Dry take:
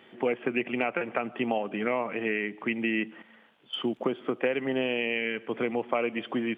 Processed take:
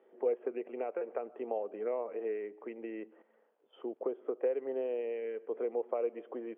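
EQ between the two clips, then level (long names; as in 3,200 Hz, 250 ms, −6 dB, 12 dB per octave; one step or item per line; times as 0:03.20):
four-pole ladder band-pass 520 Hz, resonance 55%
+2.0 dB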